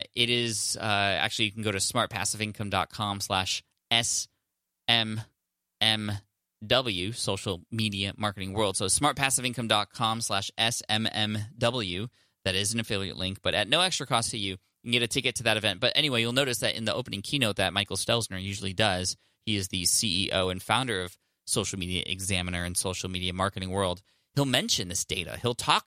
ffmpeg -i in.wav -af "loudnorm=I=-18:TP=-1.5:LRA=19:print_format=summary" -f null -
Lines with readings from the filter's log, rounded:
Input Integrated:    -27.2 LUFS
Input True Peak:      -6.1 dBTP
Input LRA:             2.5 LU
Input Threshold:     -37.4 LUFS